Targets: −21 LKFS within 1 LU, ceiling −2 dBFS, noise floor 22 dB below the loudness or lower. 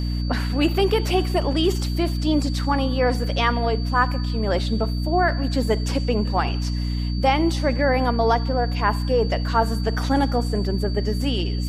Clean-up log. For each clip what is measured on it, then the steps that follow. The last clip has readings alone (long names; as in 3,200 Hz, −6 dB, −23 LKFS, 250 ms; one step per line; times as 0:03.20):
mains hum 60 Hz; hum harmonics up to 300 Hz; level of the hum −22 dBFS; interfering tone 4,600 Hz; level of the tone −37 dBFS; integrated loudness −22.0 LKFS; sample peak −5.5 dBFS; target loudness −21.0 LKFS
→ mains-hum notches 60/120/180/240/300 Hz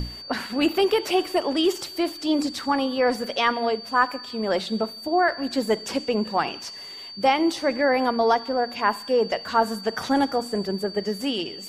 mains hum none found; interfering tone 4,600 Hz; level of the tone −37 dBFS
→ notch filter 4,600 Hz, Q 30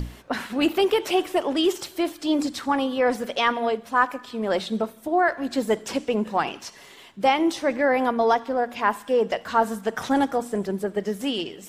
interfering tone none found; integrated loudness −24.0 LKFS; sample peak −6.5 dBFS; target loudness −21.0 LKFS
→ level +3 dB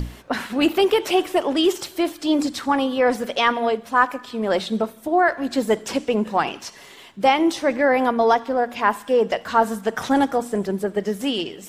integrated loudness −21.0 LKFS; sample peak −3.5 dBFS; background noise floor −44 dBFS